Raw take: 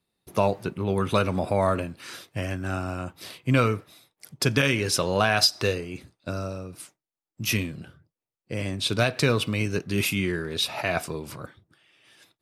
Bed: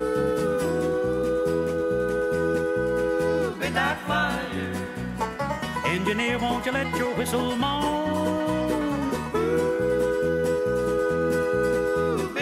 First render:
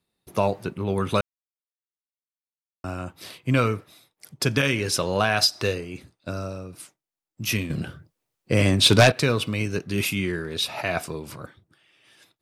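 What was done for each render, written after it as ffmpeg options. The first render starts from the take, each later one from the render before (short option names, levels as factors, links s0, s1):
-filter_complex "[0:a]asettb=1/sr,asplit=3[s0][s1][s2];[s0]atrim=end=7.704[s3];[s1]atrim=start=7.7:end=9.12,asetpts=PTS-STARTPTS,afade=t=in:d=0.004:c=qsin,afade=t=out:st=1.416:d=0.004:c=qsin,aeval=exprs='0.447*sin(PI/2*2.24*val(0)/0.447)':c=same[s4];[s2]atrim=start=9.116[s5];[s3][s4]acrossfade=d=0.004:c1=hsin:c2=qsin[s6];[s6][s5]acrossfade=d=0.004:c1=qsin:c2=hsin,asplit=3[s7][s8][s9];[s7]atrim=end=1.21,asetpts=PTS-STARTPTS,afade=t=out:st=1.206:d=0.004:c=hsin[s10];[s8]atrim=start=1.21:end=2.84,asetpts=PTS-STARTPTS,volume=0[s11];[s9]atrim=start=2.84,asetpts=PTS-STARTPTS,afade=t=in:d=0.004:c=hsin[s12];[s10][s11][s12]concat=n=3:v=0:a=1"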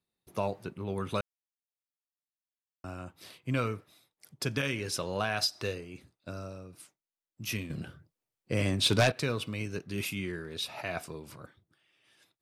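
-af "volume=0.335"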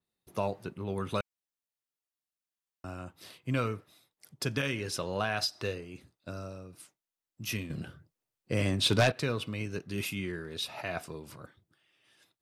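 -af "bandreject=f=2300:w=30,adynamicequalizer=threshold=0.00447:dfrequency=4400:dqfactor=0.7:tfrequency=4400:tqfactor=0.7:attack=5:release=100:ratio=0.375:range=2:mode=cutabove:tftype=highshelf"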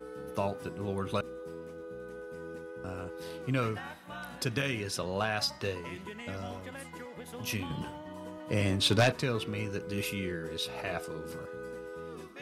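-filter_complex "[1:a]volume=0.112[s0];[0:a][s0]amix=inputs=2:normalize=0"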